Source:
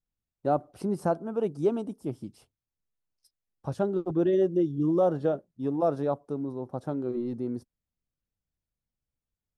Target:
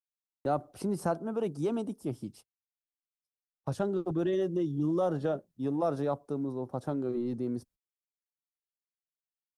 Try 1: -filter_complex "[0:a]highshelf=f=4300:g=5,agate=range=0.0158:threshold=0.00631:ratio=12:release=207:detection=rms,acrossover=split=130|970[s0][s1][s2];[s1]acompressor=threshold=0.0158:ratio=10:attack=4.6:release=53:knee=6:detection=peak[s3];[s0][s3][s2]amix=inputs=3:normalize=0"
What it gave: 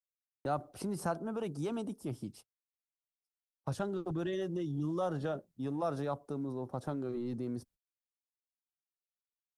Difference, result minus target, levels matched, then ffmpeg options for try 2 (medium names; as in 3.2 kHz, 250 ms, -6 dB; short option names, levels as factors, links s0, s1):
compression: peak gain reduction +8 dB
-filter_complex "[0:a]highshelf=f=4300:g=5,agate=range=0.0158:threshold=0.00631:ratio=12:release=207:detection=rms,acrossover=split=130|970[s0][s1][s2];[s1]acompressor=threshold=0.0447:ratio=10:attack=4.6:release=53:knee=6:detection=peak[s3];[s0][s3][s2]amix=inputs=3:normalize=0"